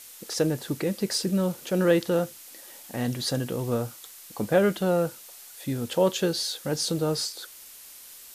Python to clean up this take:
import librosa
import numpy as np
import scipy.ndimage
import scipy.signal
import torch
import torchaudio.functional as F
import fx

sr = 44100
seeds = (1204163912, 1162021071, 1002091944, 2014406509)

y = fx.noise_reduce(x, sr, print_start_s=7.46, print_end_s=7.96, reduce_db=25.0)